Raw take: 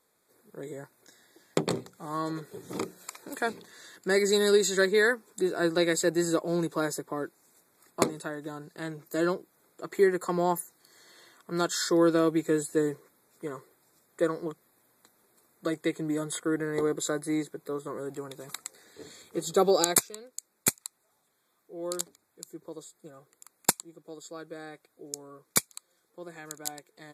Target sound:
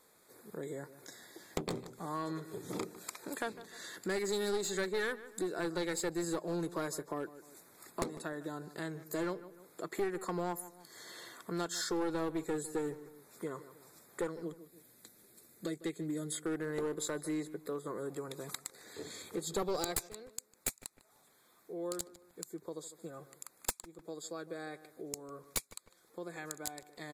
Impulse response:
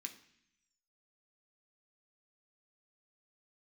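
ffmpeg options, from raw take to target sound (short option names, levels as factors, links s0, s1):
-filter_complex "[0:a]asettb=1/sr,asplit=3[s0][s1][s2];[s0]atrim=end=14.294[s3];[s1]atrim=start=14.29:end=16.44,asetpts=PTS-STARTPTS,afade=t=in:d=0.004:c=qsin,afade=t=out:st=2.146:d=0.004:c=qsin,equalizer=f=980:t=o:w=1.5:g=-11.5[s4];[s2]atrim=start=16.436[s5];[s3][s4]acrossfade=d=0.004:c1=hsin:c2=qsin[s6];[s6][s5]acrossfade=d=0.004:c1=qsin:c2=hsin,aeval=exprs='clip(val(0),-1,0.0562)':c=same,asplit=2[s7][s8];[s8]adelay=151,lowpass=f=2100:p=1,volume=0.126,asplit=2[s9][s10];[s10]adelay=151,lowpass=f=2100:p=1,volume=0.27[s11];[s7][s9][s11]amix=inputs=3:normalize=0,acompressor=threshold=0.00282:ratio=2,volume=2"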